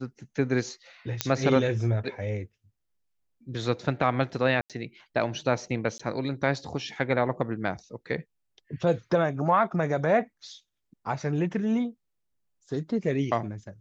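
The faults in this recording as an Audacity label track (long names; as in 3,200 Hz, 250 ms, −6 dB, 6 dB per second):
1.210000	1.210000	click −6 dBFS
4.610000	4.700000	drop-out 87 ms
5.980000	6.000000	drop-out 15 ms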